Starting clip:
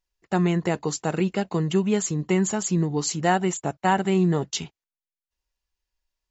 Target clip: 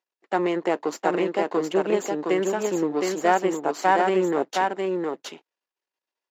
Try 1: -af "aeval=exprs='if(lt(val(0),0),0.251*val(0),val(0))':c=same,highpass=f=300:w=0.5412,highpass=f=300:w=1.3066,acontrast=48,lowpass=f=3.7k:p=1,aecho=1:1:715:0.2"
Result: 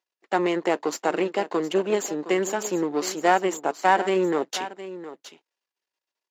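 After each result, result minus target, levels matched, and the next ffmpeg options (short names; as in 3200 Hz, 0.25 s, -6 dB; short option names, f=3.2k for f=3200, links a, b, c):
echo-to-direct -10.5 dB; 4000 Hz band +3.0 dB
-af "aeval=exprs='if(lt(val(0),0),0.251*val(0),val(0))':c=same,highpass=f=300:w=0.5412,highpass=f=300:w=1.3066,acontrast=48,lowpass=f=3.7k:p=1,aecho=1:1:715:0.668"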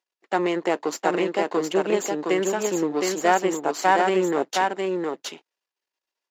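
4000 Hz band +3.5 dB
-af "aeval=exprs='if(lt(val(0),0),0.251*val(0),val(0))':c=same,highpass=f=300:w=0.5412,highpass=f=300:w=1.3066,acontrast=48,lowpass=f=1.8k:p=1,aecho=1:1:715:0.668"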